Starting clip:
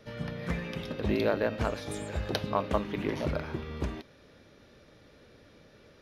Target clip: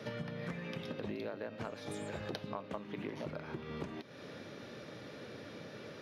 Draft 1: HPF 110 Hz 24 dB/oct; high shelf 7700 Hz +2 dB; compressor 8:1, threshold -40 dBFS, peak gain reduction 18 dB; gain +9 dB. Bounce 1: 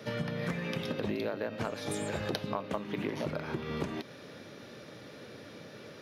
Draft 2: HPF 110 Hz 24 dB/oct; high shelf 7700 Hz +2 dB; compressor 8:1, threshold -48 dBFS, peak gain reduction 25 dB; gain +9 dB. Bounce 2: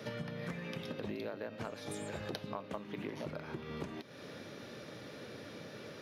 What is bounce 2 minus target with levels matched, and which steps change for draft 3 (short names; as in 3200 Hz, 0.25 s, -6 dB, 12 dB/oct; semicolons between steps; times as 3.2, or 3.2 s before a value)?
8000 Hz band +3.5 dB
change: high shelf 7700 Hz -6.5 dB